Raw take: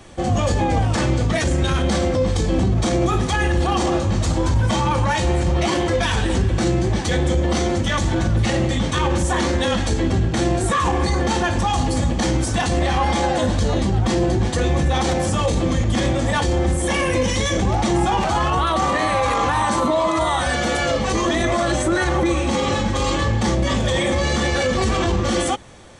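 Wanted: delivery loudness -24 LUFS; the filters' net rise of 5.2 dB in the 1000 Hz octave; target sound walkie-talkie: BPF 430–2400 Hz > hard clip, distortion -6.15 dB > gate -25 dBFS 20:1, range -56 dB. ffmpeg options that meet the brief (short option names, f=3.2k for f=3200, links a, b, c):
-af "highpass=430,lowpass=2.4k,equalizer=f=1k:t=o:g=7,asoftclip=type=hard:threshold=-22.5dB,agate=range=-56dB:threshold=-25dB:ratio=20,volume=1.5dB"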